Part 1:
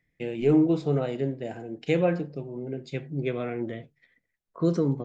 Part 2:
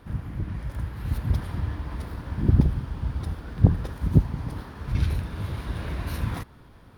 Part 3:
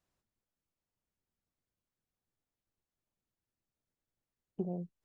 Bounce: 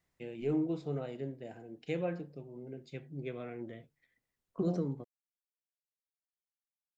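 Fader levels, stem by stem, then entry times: −11.5 dB, muted, +2.0 dB; 0.00 s, muted, 0.00 s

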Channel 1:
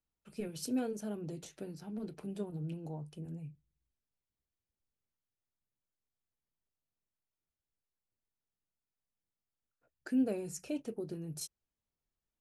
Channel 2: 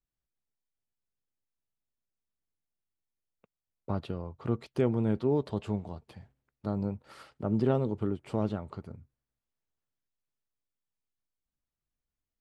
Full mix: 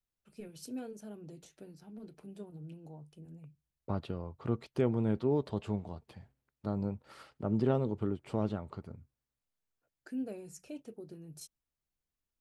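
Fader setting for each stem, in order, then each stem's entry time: −7.0, −2.5 decibels; 0.00, 0.00 seconds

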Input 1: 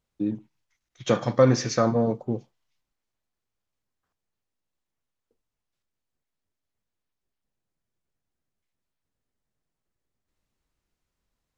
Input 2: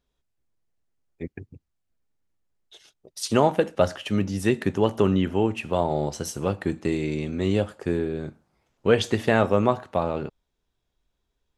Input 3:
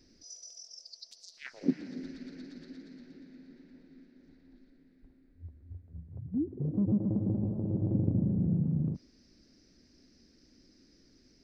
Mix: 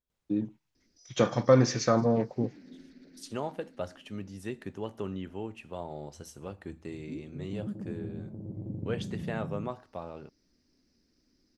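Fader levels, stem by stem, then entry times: −2.5, −15.5, −9.0 decibels; 0.10, 0.00, 0.75 seconds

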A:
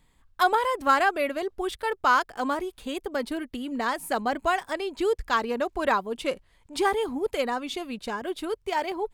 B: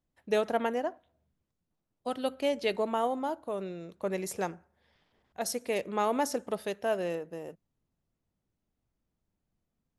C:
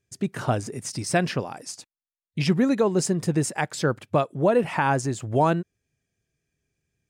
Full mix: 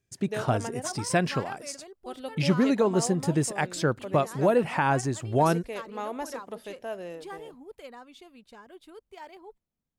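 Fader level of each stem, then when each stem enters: −17.5, −6.0, −2.0 decibels; 0.45, 0.00, 0.00 seconds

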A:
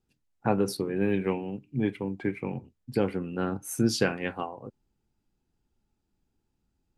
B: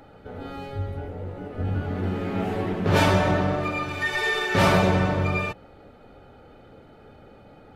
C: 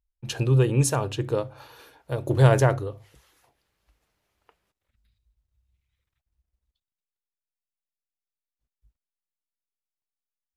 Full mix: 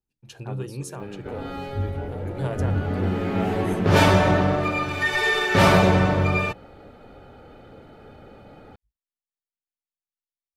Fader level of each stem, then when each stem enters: −12.5, +3.0, −12.5 decibels; 0.00, 1.00, 0.00 seconds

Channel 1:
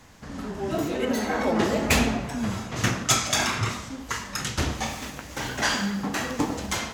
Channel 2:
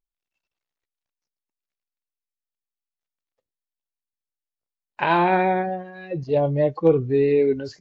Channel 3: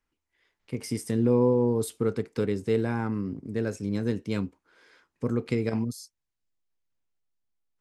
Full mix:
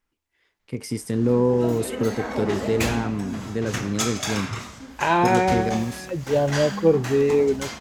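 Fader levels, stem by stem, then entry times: −4.5, −0.5, +2.5 decibels; 0.90, 0.00, 0.00 seconds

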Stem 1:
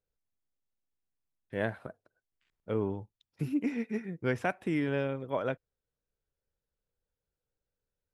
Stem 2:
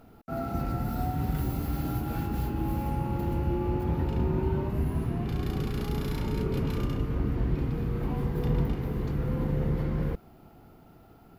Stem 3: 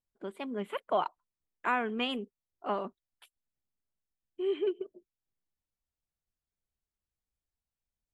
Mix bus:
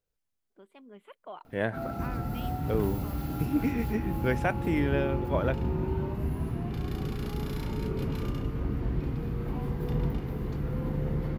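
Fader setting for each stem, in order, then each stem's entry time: +2.5, −2.5, −14.5 decibels; 0.00, 1.45, 0.35 seconds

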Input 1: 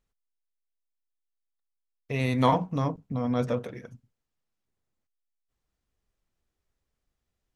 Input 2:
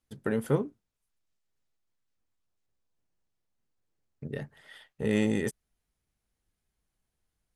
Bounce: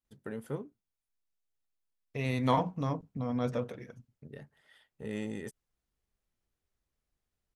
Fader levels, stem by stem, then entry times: −5.0, −11.0 decibels; 0.05, 0.00 seconds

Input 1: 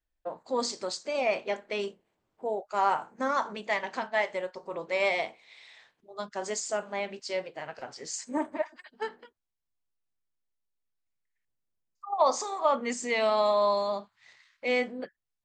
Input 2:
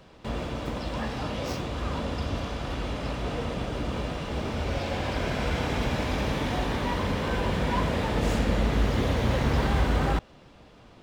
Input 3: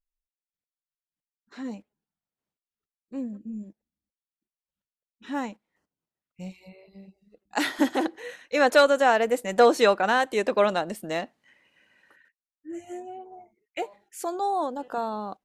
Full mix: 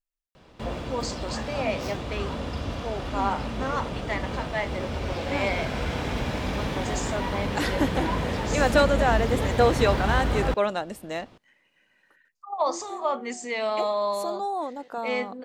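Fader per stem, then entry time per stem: −1.5, −1.0, −3.0 decibels; 0.40, 0.35, 0.00 seconds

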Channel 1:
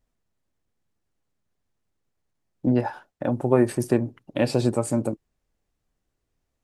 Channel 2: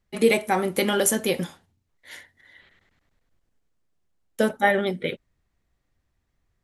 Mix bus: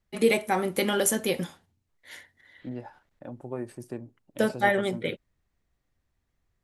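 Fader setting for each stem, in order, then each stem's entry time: −16.0, −3.0 decibels; 0.00, 0.00 seconds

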